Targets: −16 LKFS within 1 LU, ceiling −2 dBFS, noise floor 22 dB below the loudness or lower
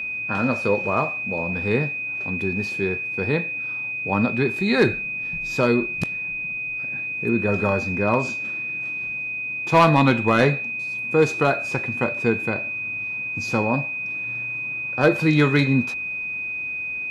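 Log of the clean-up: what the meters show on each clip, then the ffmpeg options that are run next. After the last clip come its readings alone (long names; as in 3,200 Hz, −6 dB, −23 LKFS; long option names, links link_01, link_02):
interfering tone 2,500 Hz; level of the tone −26 dBFS; integrated loudness −22.0 LKFS; sample peak −7.0 dBFS; target loudness −16.0 LKFS
→ -af "bandreject=frequency=2500:width=30"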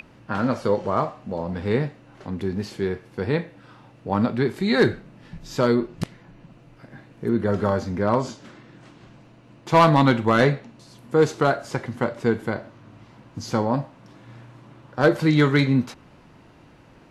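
interfering tone none found; integrated loudness −22.5 LKFS; sample peak −7.5 dBFS; target loudness −16.0 LKFS
→ -af "volume=6.5dB,alimiter=limit=-2dB:level=0:latency=1"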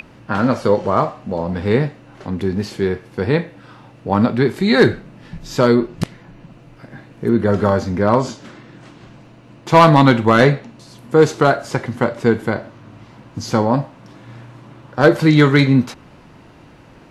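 integrated loudness −16.5 LKFS; sample peak −2.0 dBFS; background noise floor −45 dBFS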